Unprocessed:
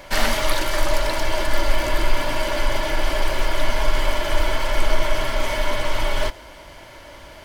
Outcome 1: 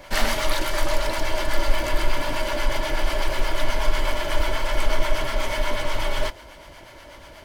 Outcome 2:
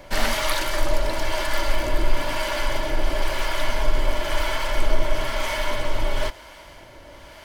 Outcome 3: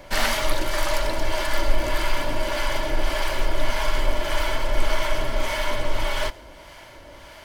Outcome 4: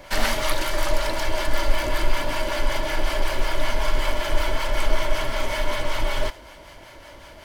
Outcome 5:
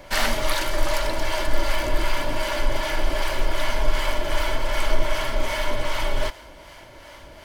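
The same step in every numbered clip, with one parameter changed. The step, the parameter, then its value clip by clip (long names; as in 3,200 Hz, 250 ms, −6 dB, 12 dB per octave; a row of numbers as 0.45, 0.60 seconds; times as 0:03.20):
two-band tremolo in antiphase, speed: 8.2, 1, 1.7, 5.3, 2.6 Hertz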